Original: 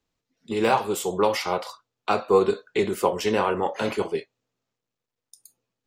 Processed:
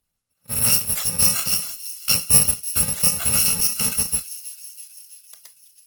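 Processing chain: bit-reversed sample order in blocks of 128 samples; 3.42–4.18 s: comb 4.6 ms, depth 43%; on a send: feedback echo behind a high-pass 329 ms, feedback 61%, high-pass 3.1 kHz, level -14.5 dB; on the sum: trim +4.5 dB; Opus 20 kbps 48 kHz

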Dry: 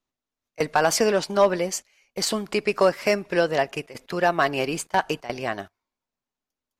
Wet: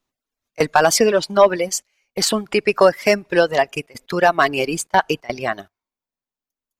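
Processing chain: reverb removal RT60 1.8 s; trim +6.5 dB

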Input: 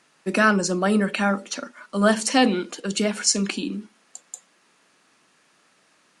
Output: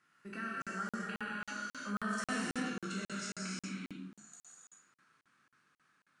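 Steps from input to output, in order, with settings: spectral sustain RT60 0.43 s; Doppler pass-by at 2.13 s, 16 m/s, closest 7.4 m; high-pass 53 Hz; peaking EQ 1.4 kHz +14 dB 0.94 oct; compression 2:1, threshold -47 dBFS, peak gain reduction 21.5 dB; FFT filter 130 Hz 0 dB, 680 Hz -16 dB, 1.3 kHz -11 dB; gated-style reverb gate 420 ms flat, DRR -5 dB; crackling interface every 0.27 s, samples 2048, zero, from 0.62 s; trim +2.5 dB

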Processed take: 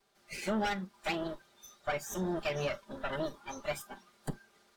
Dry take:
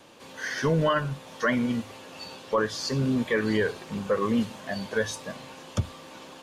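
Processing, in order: comb filter that takes the minimum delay 6.8 ms; spectral noise reduction 12 dB; speed mistake 33 rpm record played at 45 rpm; trim -7.5 dB

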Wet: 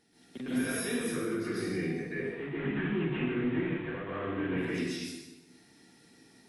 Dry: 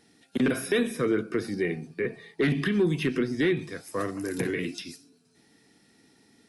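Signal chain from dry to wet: 2.15–4.58 s: CVSD coder 16 kbps; peak limiter -25.5 dBFS, peak gain reduction 11 dB; plate-style reverb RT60 1.1 s, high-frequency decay 0.85×, pre-delay 115 ms, DRR -9.5 dB; trim -8 dB

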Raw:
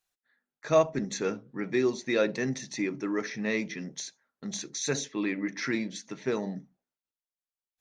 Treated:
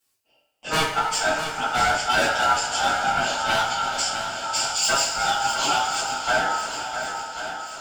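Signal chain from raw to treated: treble shelf 4.4 kHz +7 dB; wavefolder -22.5 dBFS; ring modulator 1.1 kHz; shuffle delay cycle 1091 ms, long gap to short 1.5:1, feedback 49%, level -9 dB; two-slope reverb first 0.37 s, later 4.6 s, from -18 dB, DRR -9 dB; trim +1.5 dB

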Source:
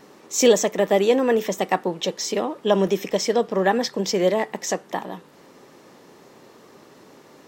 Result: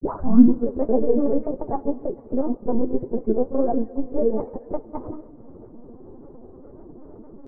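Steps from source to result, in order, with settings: tape start-up on the opening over 0.78 s; Bessel low-pass 700 Hz, order 8; peaking EQ 310 Hz +14 dB 1.6 oct; in parallel at +2.5 dB: compression, threshold -29 dBFS, peak gain reduction 26.5 dB; on the sum: monotone LPC vocoder at 8 kHz 260 Hz; granulator, spray 22 ms, pitch spread up and down by 3 st; on a send at -19 dB: reverberation RT60 3.8 s, pre-delay 36 ms; on the sum: flange 1.9 Hz, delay 4.8 ms, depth 7.3 ms, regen +43%; trim -5 dB

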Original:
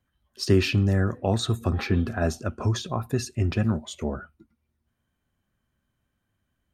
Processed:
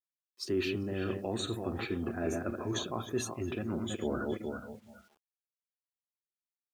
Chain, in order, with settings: backward echo that repeats 209 ms, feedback 48%, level -8.5 dB; in parallel at -3 dB: peak limiter -17.5 dBFS, peak gain reduction 8.5 dB; on the sum: spectral noise reduction 20 dB; reverse; compression 6:1, threshold -31 dBFS, peak gain reduction 17.5 dB; reverse; peaking EQ 330 Hz +8.5 dB 0.87 oct; bit crusher 11-bit; bass shelf 180 Hz -11 dB

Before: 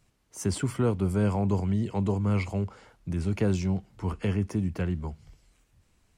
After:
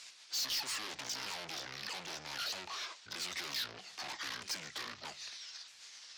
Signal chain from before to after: sawtooth pitch modulation -9.5 st, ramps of 631 ms; overdrive pedal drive 37 dB, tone 5 kHz, clips at -15 dBFS; band-pass filter 4.9 kHz, Q 1.5; saturation -32 dBFS, distortion -9 dB; trim -1 dB

